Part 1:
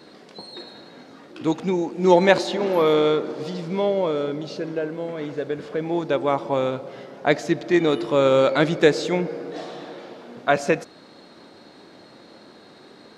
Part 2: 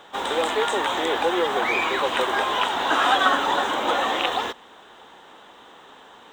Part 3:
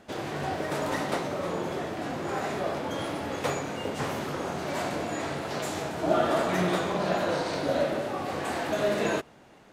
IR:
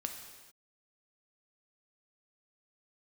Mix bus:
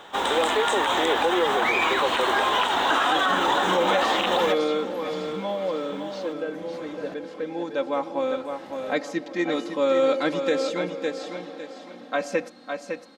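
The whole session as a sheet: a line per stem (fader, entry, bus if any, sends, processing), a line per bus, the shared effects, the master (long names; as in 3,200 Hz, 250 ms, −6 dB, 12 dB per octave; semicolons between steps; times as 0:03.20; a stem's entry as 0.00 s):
−7.0 dB, 1.65 s, no send, echo send −7 dB, low-shelf EQ 140 Hz −7.5 dB; comb filter 3.8 ms, depth 81%
+2.5 dB, 0.00 s, no send, no echo send, no processing
−13.0 dB, 0.00 s, no send, no echo send, tremolo with a ramp in dB swelling 0.56 Hz, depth 26 dB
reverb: not used
echo: repeating echo 556 ms, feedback 30%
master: brickwall limiter −12.5 dBFS, peak gain reduction 9 dB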